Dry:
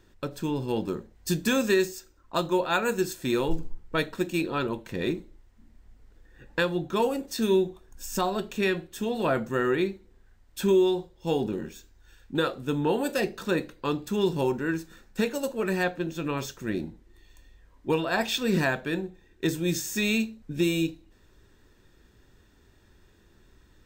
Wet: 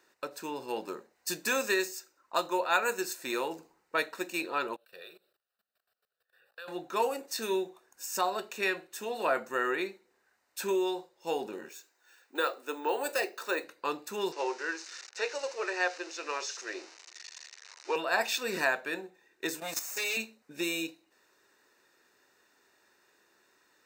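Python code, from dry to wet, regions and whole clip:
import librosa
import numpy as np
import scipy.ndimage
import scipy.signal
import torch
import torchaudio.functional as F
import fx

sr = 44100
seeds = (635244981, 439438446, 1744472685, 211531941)

y = fx.chain(x, sr, fx.tilt_eq(slope=2.0),
    fx.level_steps(step_db=20),
    fx.fixed_phaser(hz=1400.0, stages=8), at=(4.76, 6.68))
y = fx.chain(y, sr, fx.highpass(hz=290.0, slope=24),
    fx.resample_bad(factor=2, down='none', up='hold'), at=(11.69, 13.64))
y = fx.chain(y, sr, fx.crossing_spikes(level_db=-27.5),
    fx.ellip_bandpass(low_hz=370.0, high_hz=6000.0, order=3, stop_db=40), at=(14.32, 17.96))
y = fx.chain(y, sr, fx.lower_of_two(delay_ms=7.0),
    fx.high_shelf(hz=4200.0, db=4.0),
    fx.level_steps(step_db=10), at=(19.6, 20.17))
y = scipy.signal.sosfilt(scipy.signal.butter(2, 580.0, 'highpass', fs=sr, output='sos'), y)
y = fx.notch(y, sr, hz=3300.0, q=5.1)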